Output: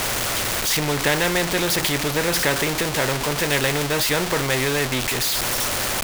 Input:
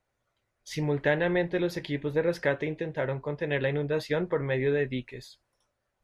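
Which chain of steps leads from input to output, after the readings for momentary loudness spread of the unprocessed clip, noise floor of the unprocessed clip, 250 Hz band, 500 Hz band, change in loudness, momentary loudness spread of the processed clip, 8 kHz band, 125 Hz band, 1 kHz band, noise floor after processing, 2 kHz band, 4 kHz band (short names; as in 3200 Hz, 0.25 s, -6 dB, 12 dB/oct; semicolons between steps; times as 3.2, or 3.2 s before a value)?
7 LU, -80 dBFS, +5.5 dB, +3.5 dB, +8.5 dB, 2 LU, n/a, +5.5 dB, +14.0 dB, -26 dBFS, +11.0 dB, +21.0 dB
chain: zero-crossing step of -33.5 dBFS; spectral compressor 2:1; gain +6 dB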